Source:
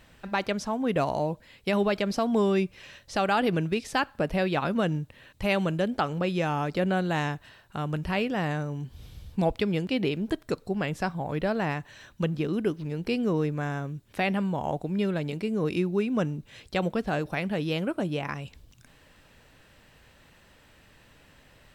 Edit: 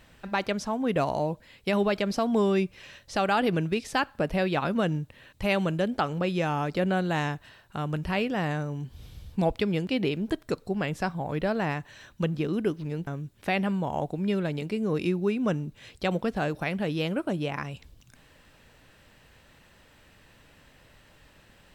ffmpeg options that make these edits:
-filter_complex "[0:a]asplit=2[a][b];[a]atrim=end=13.072[c];[b]atrim=start=13.778[d];[c][d]acrossfade=d=0.004:c1=hsin:c2=hsin"

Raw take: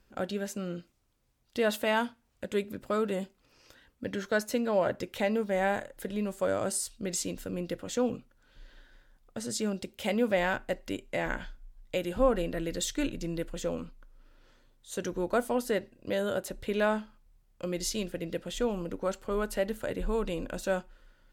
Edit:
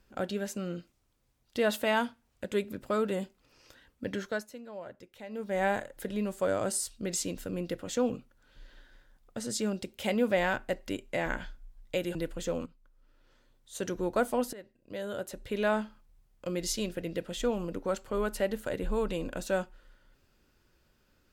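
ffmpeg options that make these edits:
-filter_complex "[0:a]asplit=6[a][b][c][d][e][f];[a]atrim=end=4.51,asetpts=PTS-STARTPTS,afade=t=out:st=4.15:d=0.36:silence=0.158489[g];[b]atrim=start=4.51:end=5.28,asetpts=PTS-STARTPTS,volume=-16dB[h];[c]atrim=start=5.28:end=12.152,asetpts=PTS-STARTPTS,afade=t=in:d=0.36:silence=0.158489[i];[d]atrim=start=13.318:end=13.83,asetpts=PTS-STARTPTS,afade=t=out:st=0.508:d=0.004:c=hsin:silence=0.211349[j];[e]atrim=start=13.83:end=15.7,asetpts=PTS-STARTPTS,afade=t=in:d=1.22:silence=0.211349,afade=t=out:st=1.866:d=0.004:c=hsin:silence=0.105925[k];[f]atrim=start=15.7,asetpts=PTS-STARTPTS,afade=t=in:d=1.28:silence=0.105925[l];[g][h][i]concat=n=3:v=0:a=1[m];[j][k][l]concat=n=3:v=0:a=1[n];[m][n]acrossfade=d=0.004:c1=hsin:c2=hsin"

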